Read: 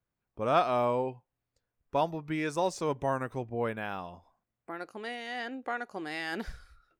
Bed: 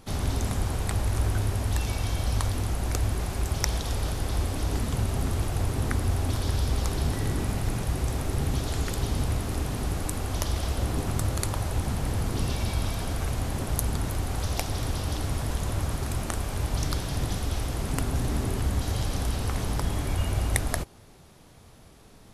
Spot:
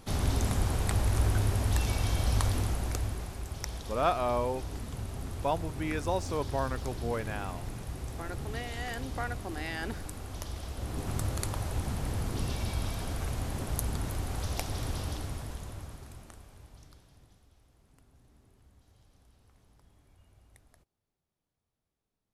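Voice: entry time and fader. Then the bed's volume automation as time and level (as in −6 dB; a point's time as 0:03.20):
3.50 s, −2.0 dB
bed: 0:02.57 −1 dB
0:03.43 −11 dB
0:10.72 −11 dB
0:11.14 −5 dB
0:15.02 −5 dB
0:17.54 −35 dB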